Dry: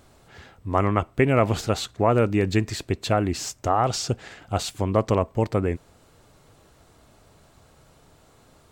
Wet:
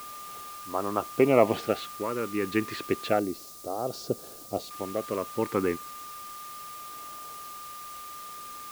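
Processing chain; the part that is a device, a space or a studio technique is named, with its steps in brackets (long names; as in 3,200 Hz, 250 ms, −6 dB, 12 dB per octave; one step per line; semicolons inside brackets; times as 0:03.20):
shortwave radio (band-pass filter 280–2,700 Hz; amplitude tremolo 0.7 Hz, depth 67%; auto-filter notch sine 0.31 Hz 640–2,100 Hz; steady tone 1,200 Hz −43 dBFS; white noise bed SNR 16 dB)
0:03.19–0:04.71: flat-topped bell 1,600 Hz −12 dB 2.3 octaves
level +2.5 dB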